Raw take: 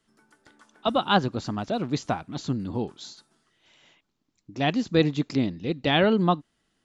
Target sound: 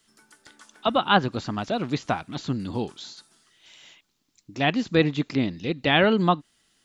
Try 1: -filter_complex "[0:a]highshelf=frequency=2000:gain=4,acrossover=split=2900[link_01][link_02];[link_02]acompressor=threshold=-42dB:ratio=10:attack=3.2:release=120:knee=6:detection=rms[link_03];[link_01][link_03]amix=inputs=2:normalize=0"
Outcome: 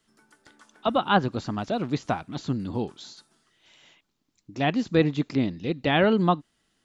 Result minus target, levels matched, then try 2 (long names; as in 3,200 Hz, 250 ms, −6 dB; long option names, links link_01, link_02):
4,000 Hz band −4.0 dB
-filter_complex "[0:a]highshelf=frequency=2000:gain=13,acrossover=split=2900[link_01][link_02];[link_02]acompressor=threshold=-42dB:ratio=10:attack=3.2:release=120:knee=6:detection=rms[link_03];[link_01][link_03]amix=inputs=2:normalize=0"